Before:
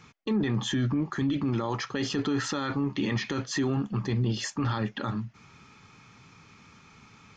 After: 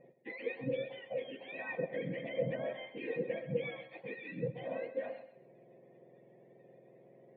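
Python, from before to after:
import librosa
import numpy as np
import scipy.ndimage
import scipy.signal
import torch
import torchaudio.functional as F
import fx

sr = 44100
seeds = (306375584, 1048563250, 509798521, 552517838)

y = fx.octave_mirror(x, sr, pivot_hz=940.0)
y = fx.formant_cascade(y, sr, vowel='e')
y = fx.echo_feedback(y, sr, ms=130, feedback_pct=27, wet_db=-11.5)
y = y * librosa.db_to_amplitude(7.0)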